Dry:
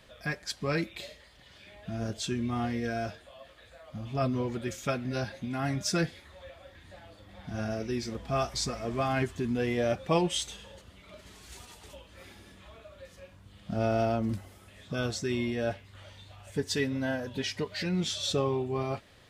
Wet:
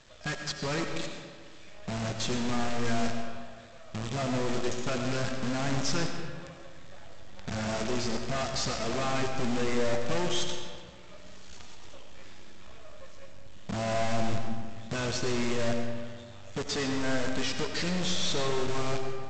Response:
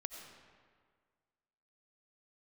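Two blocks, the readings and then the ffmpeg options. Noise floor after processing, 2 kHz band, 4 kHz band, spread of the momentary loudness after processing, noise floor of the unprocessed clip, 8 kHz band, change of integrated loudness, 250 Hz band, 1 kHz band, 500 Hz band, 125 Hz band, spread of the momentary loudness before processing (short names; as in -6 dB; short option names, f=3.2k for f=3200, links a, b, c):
-46 dBFS, +2.0 dB, +2.5 dB, 21 LU, -56 dBFS, +2.5 dB, 0.0 dB, -0.5 dB, +1.0 dB, -0.5 dB, -1.0 dB, 21 LU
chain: -filter_complex "[0:a]bandreject=f=2.1k:w=28,asplit=2[a][b];[b]aeval=exprs='sgn(val(0))*max(abs(val(0))-0.0112,0)':c=same,volume=-9.5dB[c];[a][c]amix=inputs=2:normalize=0,acontrast=80,aeval=exprs='(tanh(17.8*val(0)+0.3)-tanh(0.3))/17.8':c=same,aresample=16000,acrusher=bits=6:dc=4:mix=0:aa=0.000001,aresample=44100[d];[1:a]atrim=start_sample=2205[e];[d][e]afir=irnorm=-1:irlink=0"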